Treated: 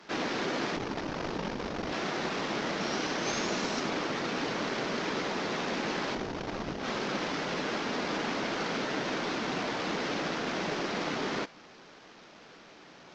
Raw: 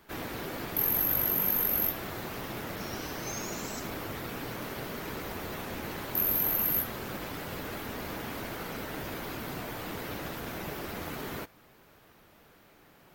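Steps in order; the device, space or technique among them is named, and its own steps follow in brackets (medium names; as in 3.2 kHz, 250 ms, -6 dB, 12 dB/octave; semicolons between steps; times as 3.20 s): early wireless headset (high-pass 170 Hz 24 dB/octave; CVSD coder 32 kbps); trim +6.5 dB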